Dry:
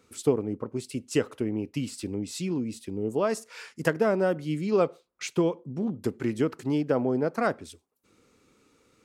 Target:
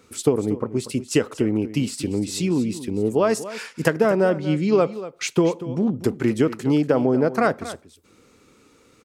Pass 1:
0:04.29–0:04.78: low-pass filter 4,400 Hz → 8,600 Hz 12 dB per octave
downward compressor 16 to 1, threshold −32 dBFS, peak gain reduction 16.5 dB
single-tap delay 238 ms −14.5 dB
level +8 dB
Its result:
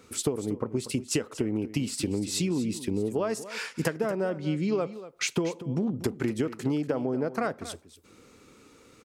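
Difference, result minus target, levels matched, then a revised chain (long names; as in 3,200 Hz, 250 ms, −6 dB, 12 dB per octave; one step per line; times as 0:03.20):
downward compressor: peak gain reduction +11 dB
0:04.29–0:04.78: low-pass filter 4,400 Hz → 8,600 Hz 12 dB per octave
downward compressor 16 to 1, threshold −20.5 dBFS, peak gain reduction 5.5 dB
single-tap delay 238 ms −14.5 dB
level +8 dB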